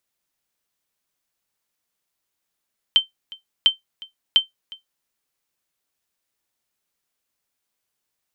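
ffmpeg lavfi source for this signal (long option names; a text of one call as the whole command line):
ffmpeg -f lavfi -i "aevalsrc='0.531*(sin(2*PI*3110*mod(t,0.7))*exp(-6.91*mod(t,0.7)/0.14)+0.075*sin(2*PI*3110*max(mod(t,0.7)-0.36,0))*exp(-6.91*max(mod(t,0.7)-0.36,0)/0.14))':duration=2.1:sample_rate=44100" out.wav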